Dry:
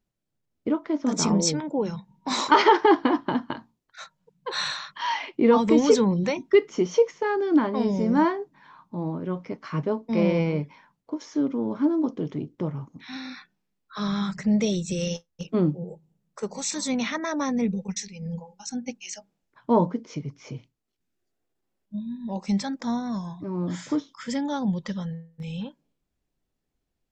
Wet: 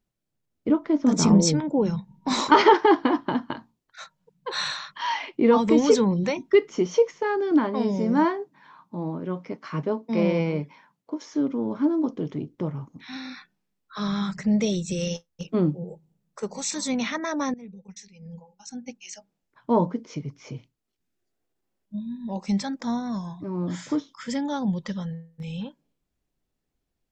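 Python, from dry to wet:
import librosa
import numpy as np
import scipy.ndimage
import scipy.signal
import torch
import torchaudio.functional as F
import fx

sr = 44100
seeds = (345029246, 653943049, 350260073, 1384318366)

y = fx.low_shelf(x, sr, hz=300.0, db=8.5, at=(0.69, 2.74))
y = fx.highpass(y, sr, hz=130.0, slope=12, at=(7.51, 11.29))
y = fx.edit(y, sr, fx.fade_in_from(start_s=17.54, length_s=2.48, floor_db=-20.5), tone=tone)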